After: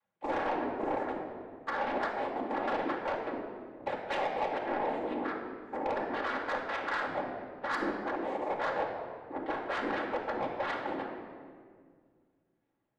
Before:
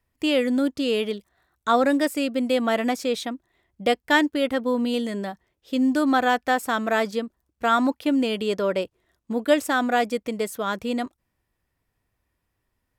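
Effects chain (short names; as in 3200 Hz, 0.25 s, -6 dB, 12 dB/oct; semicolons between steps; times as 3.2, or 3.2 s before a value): repeated pitch sweeps +12 st, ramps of 0.543 s; LPF 2800 Hz 24 dB/oct; low shelf 190 Hz +8.5 dB; notches 60/120/180/240/300/360/420 Hz; compressor, threshold -23 dBFS, peak gain reduction 9.5 dB; flange 0.23 Hz, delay 1.5 ms, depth 3.7 ms, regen +26%; noise vocoder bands 6; three-band isolator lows -14 dB, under 380 Hz, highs -16 dB, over 2200 Hz; soft clip -29 dBFS, distortion -11 dB; reverb RT60 1.9 s, pre-delay 4 ms, DRR -0.5 dB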